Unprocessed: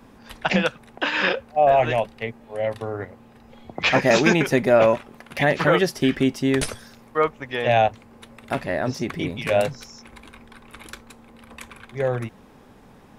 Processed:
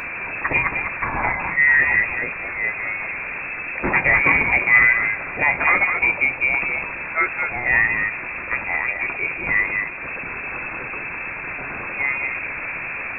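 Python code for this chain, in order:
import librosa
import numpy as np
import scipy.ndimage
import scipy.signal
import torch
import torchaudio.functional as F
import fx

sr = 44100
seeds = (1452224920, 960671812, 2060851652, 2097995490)

y = fx.delta_mod(x, sr, bps=32000, step_db=-23.5)
y = y + 10.0 ** (-6.0 / 20.0) * np.pad(y, (int(210 * sr / 1000.0), 0))[:len(y)]
y = fx.wow_flutter(y, sr, seeds[0], rate_hz=2.1, depth_cents=84.0)
y = fx.freq_invert(y, sr, carrier_hz=2600)
y = fx.rev_double_slope(y, sr, seeds[1], early_s=0.33, late_s=1.7, knee_db=-16, drr_db=13.5)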